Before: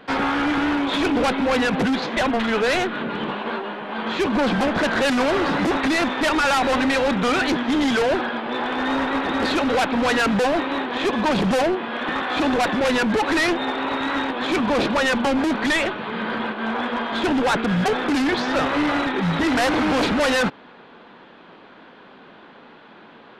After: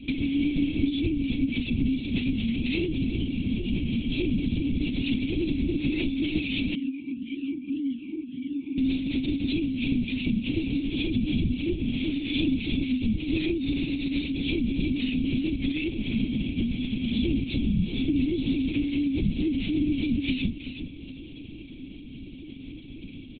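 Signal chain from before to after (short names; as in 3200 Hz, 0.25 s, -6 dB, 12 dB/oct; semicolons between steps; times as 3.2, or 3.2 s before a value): Chebyshev band-stop 360–2300 Hz, order 5; low shelf 450 Hz +11 dB; compressor 6:1, threshold -27 dBFS, peak gain reduction 15.5 dB; doubler 39 ms -8 dB; feedback echo 0.367 s, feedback 35%, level -10 dB; LPC vocoder at 8 kHz whisper; 6.75–8.78 vowel sweep i-u 1.8 Hz; gain +1.5 dB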